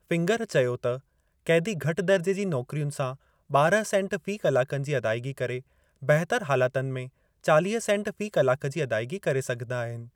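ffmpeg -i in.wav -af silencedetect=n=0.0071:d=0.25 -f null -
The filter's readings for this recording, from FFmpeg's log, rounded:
silence_start: 0.99
silence_end: 1.47 | silence_duration: 0.47
silence_start: 3.15
silence_end: 3.50 | silence_duration: 0.35
silence_start: 5.61
silence_end: 6.02 | silence_duration: 0.41
silence_start: 7.08
silence_end: 7.44 | silence_duration: 0.36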